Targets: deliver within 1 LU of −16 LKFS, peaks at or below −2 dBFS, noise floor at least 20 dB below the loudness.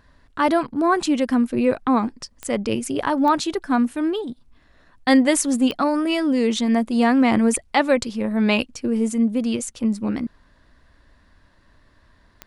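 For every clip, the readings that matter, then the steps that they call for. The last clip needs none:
number of clicks 4; integrated loudness −20.5 LKFS; sample peak −3.5 dBFS; target loudness −16.0 LKFS
→ click removal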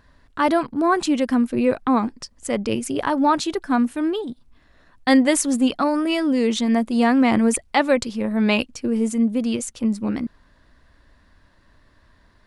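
number of clicks 0; integrated loudness −20.5 LKFS; sample peak −3.5 dBFS; target loudness −16.0 LKFS
→ level +4.5 dB
brickwall limiter −2 dBFS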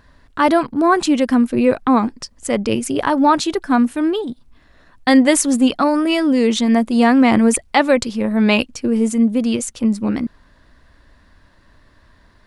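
integrated loudness −16.5 LKFS; sample peak −2.0 dBFS; background noise floor −53 dBFS

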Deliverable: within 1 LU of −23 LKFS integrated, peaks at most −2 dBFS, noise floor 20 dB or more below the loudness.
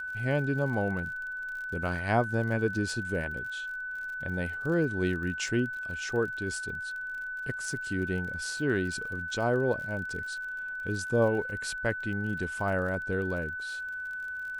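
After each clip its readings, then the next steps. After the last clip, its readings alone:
crackle rate 42 per second; interfering tone 1,500 Hz; level of the tone −34 dBFS; integrated loudness −31.0 LKFS; sample peak −13.0 dBFS; target loudness −23.0 LKFS
→ click removal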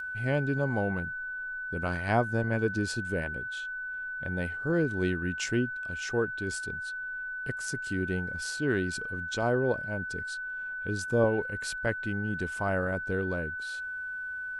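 crackle rate 0.069 per second; interfering tone 1,500 Hz; level of the tone −34 dBFS
→ notch filter 1,500 Hz, Q 30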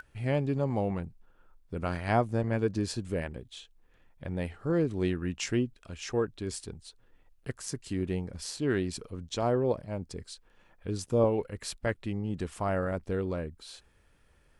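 interfering tone none found; integrated loudness −32.0 LKFS; sample peak −13.0 dBFS; target loudness −23.0 LKFS
→ level +9 dB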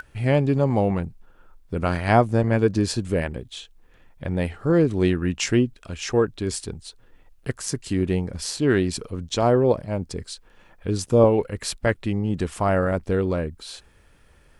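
integrated loudness −23.0 LKFS; sample peak −4.0 dBFS; background noise floor −55 dBFS

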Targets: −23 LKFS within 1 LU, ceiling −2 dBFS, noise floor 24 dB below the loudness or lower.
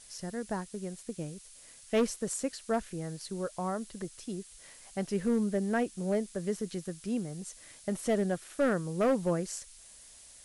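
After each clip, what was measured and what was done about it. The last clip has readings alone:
share of clipped samples 0.9%; peaks flattened at −21.5 dBFS; background noise floor −54 dBFS; target noise floor −58 dBFS; integrated loudness −33.5 LKFS; sample peak −21.5 dBFS; target loudness −23.0 LKFS
→ clipped peaks rebuilt −21.5 dBFS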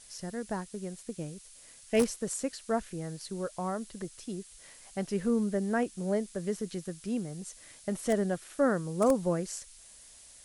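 share of clipped samples 0.0%; background noise floor −54 dBFS; target noise floor −57 dBFS
→ noise reduction from a noise print 6 dB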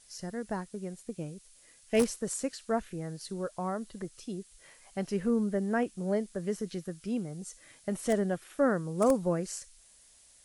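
background noise floor −60 dBFS; integrated loudness −33.0 LKFS; sample peak −12.5 dBFS; target loudness −23.0 LKFS
→ level +10 dB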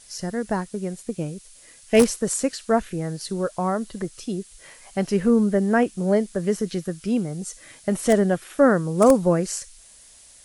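integrated loudness −23.0 LKFS; sample peak −2.5 dBFS; background noise floor −50 dBFS

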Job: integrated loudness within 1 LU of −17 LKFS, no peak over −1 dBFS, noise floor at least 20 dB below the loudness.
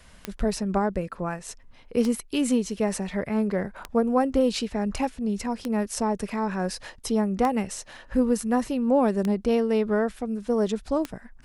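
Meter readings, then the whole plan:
number of clicks 7; integrated loudness −26.0 LKFS; sample peak −10.5 dBFS; target loudness −17.0 LKFS
→ click removal
level +9 dB

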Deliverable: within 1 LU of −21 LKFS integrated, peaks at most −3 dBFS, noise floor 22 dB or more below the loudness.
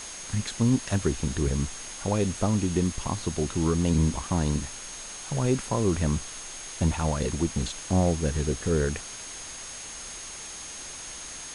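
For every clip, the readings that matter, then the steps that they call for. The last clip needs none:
interfering tone 6,500 Hz; level of the tone −41 dBFS; background noise floor −40 dBFS; target noise floor −51 dBFS; integrated loudness −28.5 LKFS; sample peak −11.5 dBFS; target loudness −21.0 LKFS
→ notch filter 6,500 Hz, Q 30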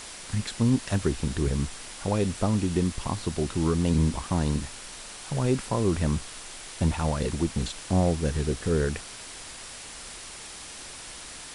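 interfering tone none found; background noise floor −42 dBFS; target noise floor −50 dBFS
→ broadband denoise 8 dB, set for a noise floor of −42 dBFS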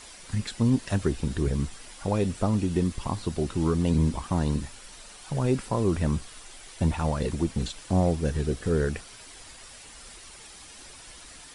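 background noise floor −47 dBFS; target noise floor −50 dBFS
→ broadband denoise 6 dB, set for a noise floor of −47 dBFS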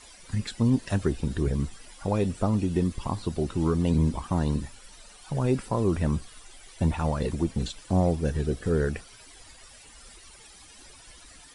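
background noise floor −51 dBFS; integrated loudness −27.5 LKFS; sample peak −12.0 dBFS; target loudness −21.0 LKFS
→ level +6.5 dB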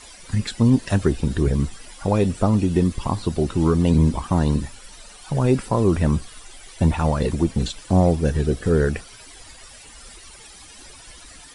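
integrated loudness −21.0 LKFS; sample peak −5.5 dBFS; background noise floor −44 dBFS

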